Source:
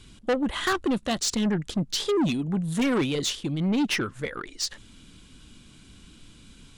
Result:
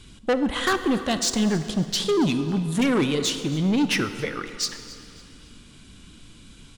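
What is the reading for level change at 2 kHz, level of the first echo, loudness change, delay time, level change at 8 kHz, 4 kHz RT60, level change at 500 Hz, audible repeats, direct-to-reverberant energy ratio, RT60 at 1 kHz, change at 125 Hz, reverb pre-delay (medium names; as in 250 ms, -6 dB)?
+3.0 dB, -19.0 dB, +3.0 dB, 276 ms, +3.0 dB, 2.0 s, +3.0 dB, 2, 9.5 dB, 2.8 s, +3.0 dB, 29 ms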